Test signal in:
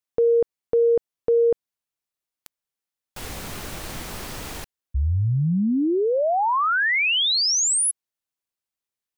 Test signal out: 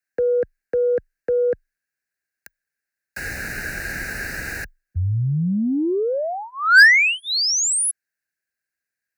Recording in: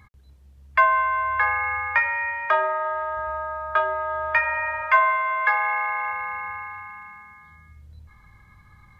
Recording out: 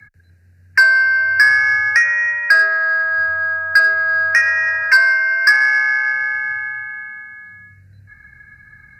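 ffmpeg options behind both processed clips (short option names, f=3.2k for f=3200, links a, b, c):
-filter_complex "[0:a]acrossover=split=100|670|900[a][b][c][d];[c]acompressor=threshold=-41dB:ratio=6:release=355[e];[d]highpass=f=1.6k:t=q:w=13[f];[a][b][e][f]amix=inputs=4:normalize=0,acontrast=50,afreqshift=21,asuperstop=centerf=3300:order=4:qfactor=2.7,volume=-5.5dB"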